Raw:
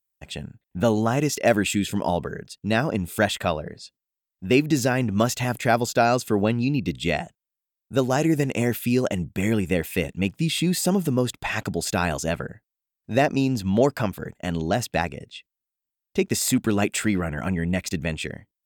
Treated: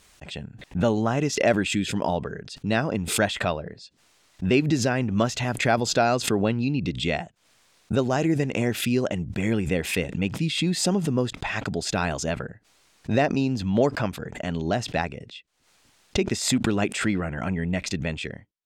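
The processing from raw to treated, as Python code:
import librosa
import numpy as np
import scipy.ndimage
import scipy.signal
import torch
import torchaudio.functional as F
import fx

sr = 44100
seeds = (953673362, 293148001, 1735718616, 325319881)

y = scipy.signal.sosfilt(scipy.signal.butter(2, 6100.0, 'lowpass', fs=sr, output='sos'), x)
y = fx.pre_swell(y, sr, db_per_s=84.0)
y = F.gain(torch.from_numpy(y), -2.0).numpy()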